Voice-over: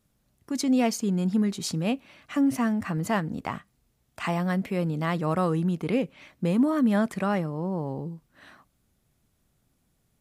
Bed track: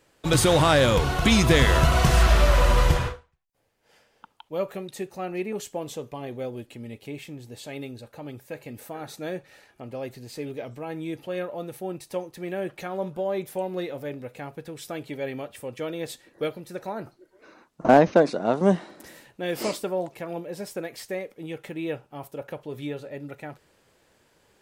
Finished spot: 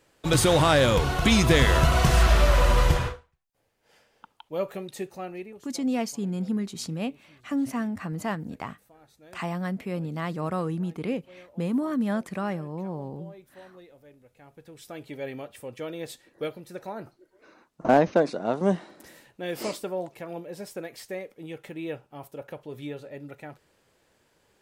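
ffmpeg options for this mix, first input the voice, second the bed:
ffmpeg -i stem1.wav -i stem2.wav -filter_complex "[0:a]adelay=5150,volume=-4dB[link_01];[1:a]volume=15dB,afade=type=out:start_time=5.06:duration=0.54:silence=0.11885,afade=type=in:start_time=14.34:duration=0.86:silence=0.158489[link_02];[link_01][link_02]amix=inputs=2:normalize=0" out.wav

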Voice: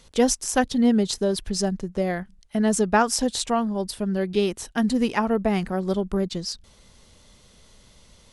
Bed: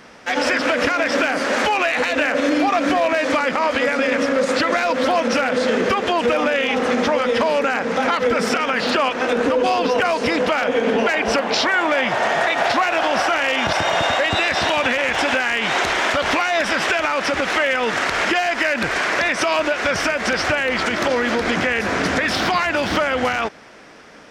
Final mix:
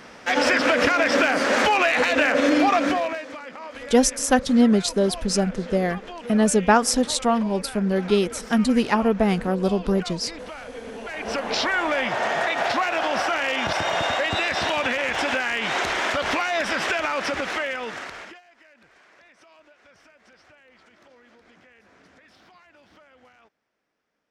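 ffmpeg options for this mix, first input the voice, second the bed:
ffmpeg -i stem1.wav -i stem2.wav -filter_complex "[0:a]adelay=3750,volume=2.5dB[link_01];[1:a]volume=13dB,afade=type=out:start_time=2.7:duration=0.56:silence=0.125893,afade=type=in:start_time=11.03:duration=0.55:silence=0.211349,afade=type=out:start_time=17.21:duration=1.2:silence=0.0316228[link_02];[link_01][link_02]amix=inputs=2:normalize=0" out.wav

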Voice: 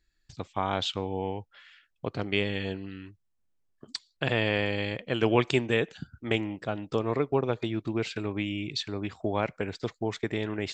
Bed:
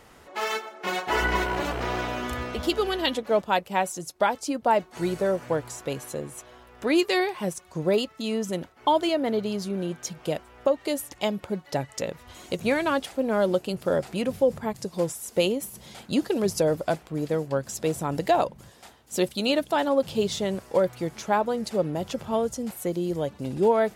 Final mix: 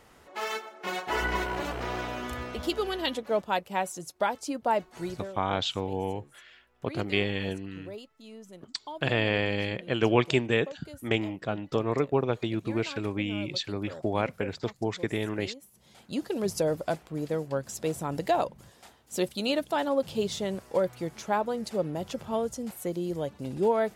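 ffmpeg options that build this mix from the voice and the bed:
ffmpeg -i stem1.wav -i stem2.wav -filter_complex "[0:a]adelay=4800,volume=0.5dB[link_01];[1:a]volume=10.5dB,afade=type=out:start_time=4.88:duration=0.45:silence=0.188365,afade=type=in:start_time=15.72:duration=0.79:silence=0.177828[link_02];[link_01][link_02]amix=inputs=2:normalize=0" out.wav

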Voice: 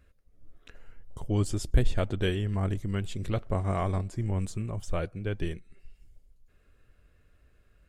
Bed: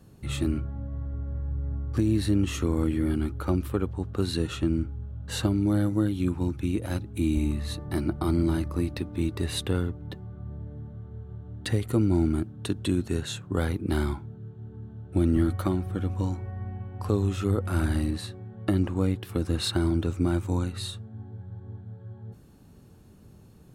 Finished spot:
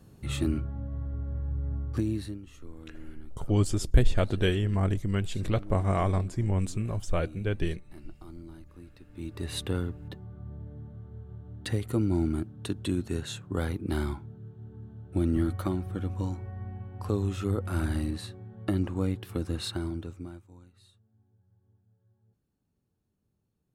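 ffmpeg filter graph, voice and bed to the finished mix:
ffmpeg -i stem1.wav -i stem2.wav -filter_complex "[0:a]adelay=2200,volume=2.5dB[link_01];[1:a]volume=17dB,afade=type=out:start_time=1.82:duration=0.58:silence=0.0944061,afade=type=in:start_time=9.05:duration=0.54:silence=0.125893,afade=type=out:start_time=19.33:duration=1.12:silence=0.0749894[link_02];[link_01][link_02]amix=inputs=2:normalize=0" out.wav

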